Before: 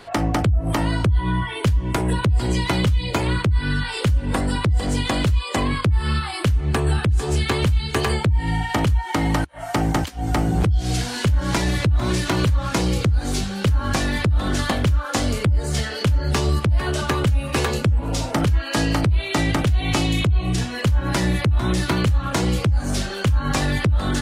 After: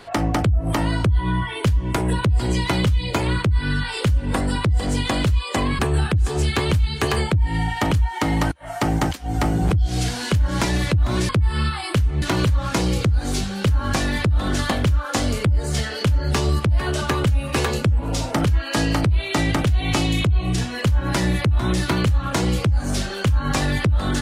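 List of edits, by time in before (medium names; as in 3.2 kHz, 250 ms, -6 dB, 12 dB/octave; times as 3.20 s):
5.79–6.72 s: move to 12.22 s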